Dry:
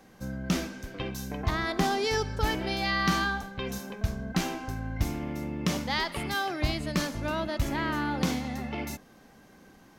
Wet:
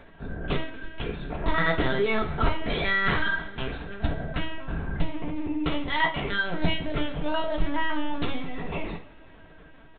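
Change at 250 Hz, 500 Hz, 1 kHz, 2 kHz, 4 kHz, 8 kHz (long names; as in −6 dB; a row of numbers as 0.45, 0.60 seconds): 0.0 dB, +3.0 dB, +1.0 dB, +4.5 dB, +0.5 dB, below −40 dB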